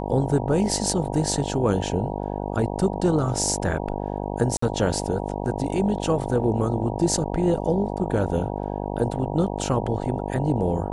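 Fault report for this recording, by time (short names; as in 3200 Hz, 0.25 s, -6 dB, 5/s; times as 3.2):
buzz 50 Hz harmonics 19 -29 dBFS
4.57–4.62 gap 54 ms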